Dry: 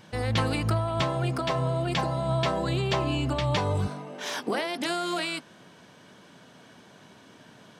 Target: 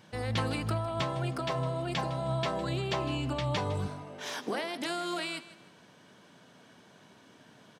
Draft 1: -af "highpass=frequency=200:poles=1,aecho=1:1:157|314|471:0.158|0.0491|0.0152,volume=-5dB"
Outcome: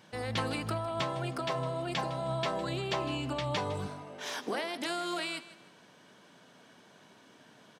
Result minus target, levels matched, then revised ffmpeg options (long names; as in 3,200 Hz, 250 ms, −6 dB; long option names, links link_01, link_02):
125 Hz band −3.5 dB
-af "highpass=frequency=54:poles=1,aecho=1:1:157|314|471:0.158|0.0491|0.0152,volume=-5dB"